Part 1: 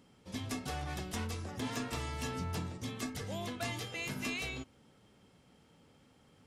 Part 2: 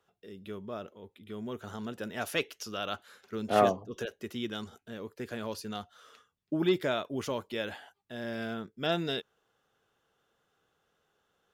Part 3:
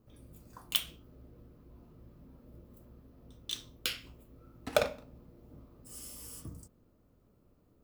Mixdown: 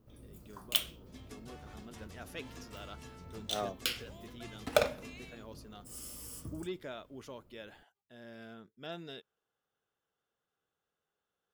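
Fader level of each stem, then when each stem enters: -13.5 dB, -13.5 dB, +0.5 dB; 0.80 s, 0.00 s, 0.00 s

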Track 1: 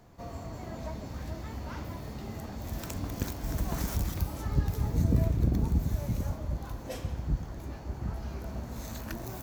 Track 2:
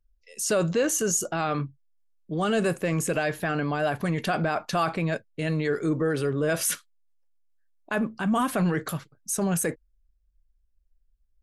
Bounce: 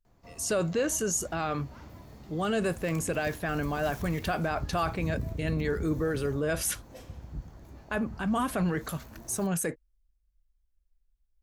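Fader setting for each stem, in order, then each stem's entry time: -9.0 dB, -4.0 dB; 0.05 s, 0.00 s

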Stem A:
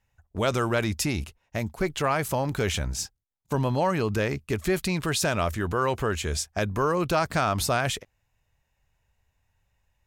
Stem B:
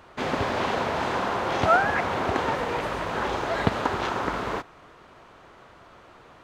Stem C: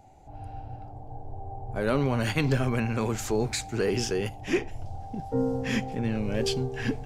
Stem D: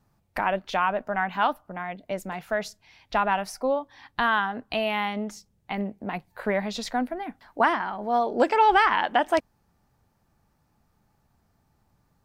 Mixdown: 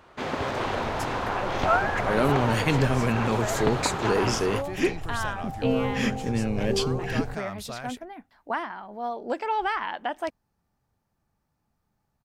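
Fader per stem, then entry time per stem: -13.0 dB, -3.0 dB, +2.0 dB, -8.0 dB; 0.00 s, 0.00 s, 0.30 s, 0.90 s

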